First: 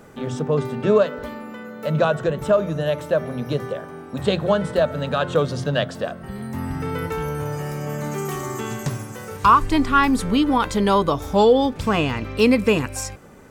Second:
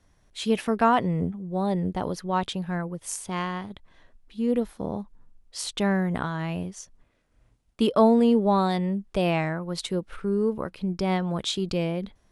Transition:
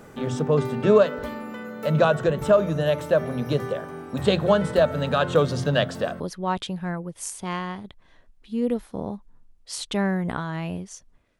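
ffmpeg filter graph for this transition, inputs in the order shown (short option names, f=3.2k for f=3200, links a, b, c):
-filter_complex "[0:a]apad=whole_dur=11.39,atrim=end=11.39,atrim=end=6.202[a];[1:a]atrim=start=2.058:end=7.25[b];[a][b]acrossfade=d=0.004:c1=hsin:c2=hsin"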